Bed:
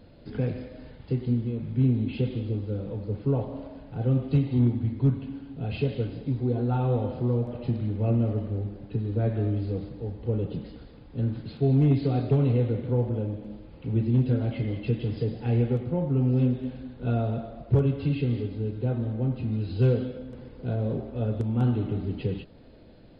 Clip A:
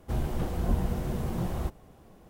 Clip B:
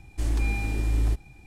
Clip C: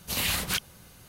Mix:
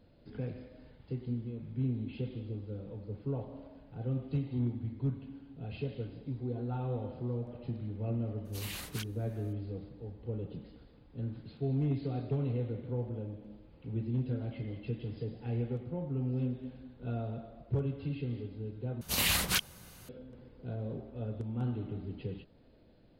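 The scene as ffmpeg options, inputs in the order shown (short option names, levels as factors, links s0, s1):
-filter_complex "[3:a]asplit=2[s0][s1];[0:a]volume=0.299,asplit=2[s2][s3];[s2]atrim=end=19.014[s4];[s1]atrim=end=1.08,asetpts=PTS-STARTPTS,volume=0.891[s5];[s3]atrim=start=20.086[s6];[s0]atrim=end=1.08,asetpts=PTS-STARTPTS,volume=0.188,afade=t=in:d=0.004:c=hsin,afade=t=out:st=1.076:d=0.004:c=hsin,adelay=8450[s7];[s4][s5]acrossfade=d=0.004:c1=hsin:c2=hsin[s8];[s8][s6]acrossfade=d=0.004:c1=hsin:c2=hsin[s9];[s9][s7]amix=inputs=2:normalize=0"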